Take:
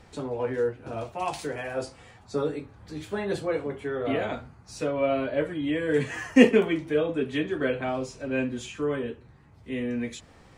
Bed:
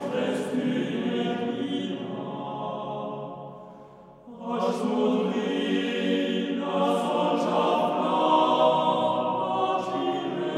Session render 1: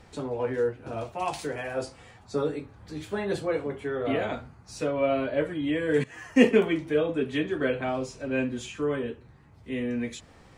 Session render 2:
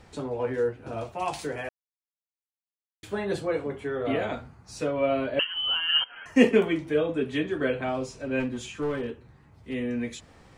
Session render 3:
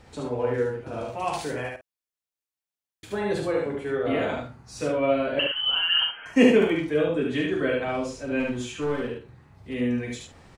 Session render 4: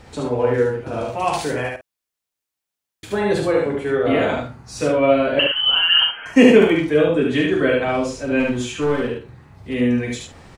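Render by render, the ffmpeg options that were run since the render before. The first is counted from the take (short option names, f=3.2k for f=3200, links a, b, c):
-filter_complex "[0:a]asplit=2[a][b];[a]atrim=end=6.04,asetpts=PTS-STARTPTS,afade=t=out:st=6.036:d=0.004:c=hsin:silence=0.158489[c];[b]atrim=start=6.04,asetpts=PTS-STARTPTS,afade=t=in:d=0.54:silence=0.158489[d];[c][d]concat=n=2:v=0:a=1"
-filter_complex "[0:a]asettb=1/sr,asplit=3[a][b][c];[a]atrim=end=5.394[d];[b]atrim=start=5.39:end=6.26,asetpts=PTS-STARTPTS,afade=t=in:d=0.004:c=qsin,afade=t=out:st=0.866:d=0.004:c=qsin,lowpass=f=2.8k:t=q:w=0.5098,lowpass=f=2.8k:t=q:w=0.6013,lowpass=f=2.8k:t=q:w=0.9,lowpass=f=2.8k:t=q:w=2.563,afreqshift=-3300[e];[c]atrim=start=6.256[f];[d][e]acrossfade=d=0.004:c1=hsin:c2=qsin[g];[g][f]acrossfade=d=0.004:c1=qsin:c2=hsin,asplit=3[h][i][j];[h]afade=t=out:st=8.39:d=0.02[k];[i]aeval=exprs='clip(val(0),-1,0.0398)':c=same,afade=t=in:st=8.39:d=0.02,afade=t=out:st=9.73:d=0.02[l];[j]afade=t=in:st=9.73:d=0.02[m];[k][l][m]amix=inputs=3:normalize=0,asplit=3[n][o][p];[n]atrim=end=1.69,asetpts=PTS-STARTPTS,afade=t=out:st=1.686:d=0.004:c=hsin[q];[o]atrim=start=1.69:end=3.03,asetpts=PTS-STARTPTS,volume=0[r];[p]atrim=start=3.03,asetpts=PTS-STARTPTS,afade=t=in:d=0.004:c=hsin[s];[q][r][s]concat=n=3:v=0:a=1"
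-filter_complex "[0:a]asplit=2[a][b];[b]adelay=49,volume=-11dB[c];[a][c]amix=inputs=2:normalize=0,aecho=1:1:40.82|72.89:0.355|0.708"
-af "volume=7.5dB,alimiter=limit=-1dB:level=0:latency=1"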